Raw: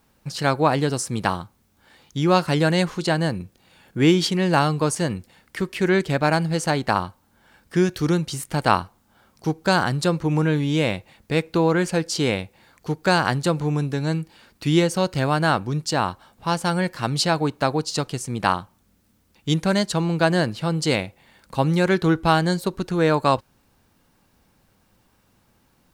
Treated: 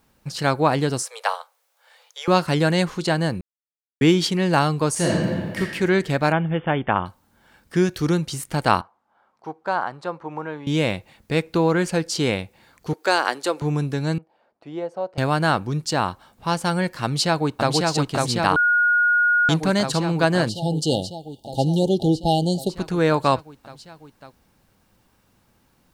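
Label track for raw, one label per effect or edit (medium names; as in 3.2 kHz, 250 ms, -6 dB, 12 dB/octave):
1.030000	2.280000	steep high-pass 460 Hz 96 dB/octave
3.410000	4.010000	mute
4.920000	5.590000	reverb throw, RT60 1.8 s, DRR -4.5 dB
6.320000	7.060000	brick-wall FIR low-pass 3.6 kHz
8.810000	10.670000	band-pass filter 900 Hz, Q 1.5
12.930000	13.620000	high-pass 330 Hz 24 dB/octave
14.180000	15.180000	band-pass filter 660 Hz, Q 2.9
17.040000	17.710000	echo throw 550 ms, feedback 80%, level -2 dB
18.560000	19.490000	bleep 1.44 kHz -14.5 dBFS
20.490000	22.700000	brick-wall FIR band-stop 890–2800 Hz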